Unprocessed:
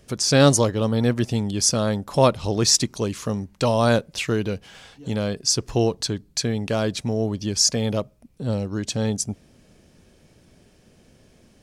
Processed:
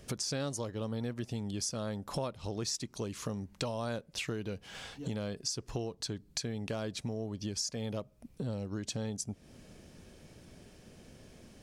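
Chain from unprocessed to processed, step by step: compressor 6:1, threshold -35 dBFS, peak gain reduction 22.5 dB

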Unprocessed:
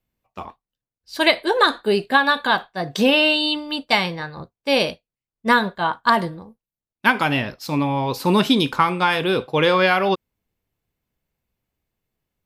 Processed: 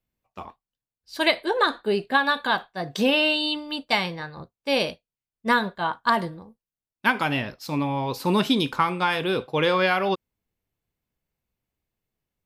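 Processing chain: 1.46–2.15 high shelf 4200 Hz -5.5 dB; gain -4.5 dB

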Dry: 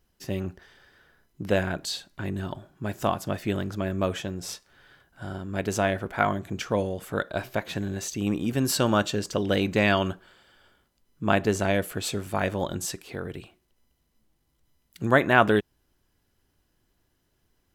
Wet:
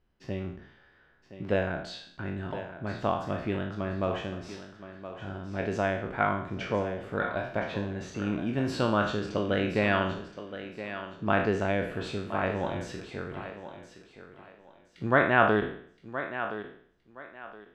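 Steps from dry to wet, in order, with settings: spectral trails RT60 0.58 s; LPF 2800 Hz 12 dB/oct; thinning echo 1.02 s, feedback 27%, high-pass 180 Hz, level -11 dB; gain -4.5 dB

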